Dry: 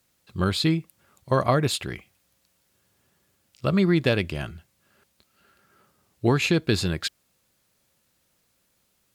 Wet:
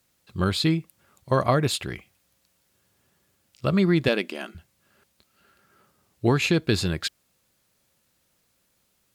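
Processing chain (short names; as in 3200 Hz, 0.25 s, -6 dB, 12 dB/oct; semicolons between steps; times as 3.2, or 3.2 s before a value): 4.08–4.55 brick-wall FIR high-pass 190 Hz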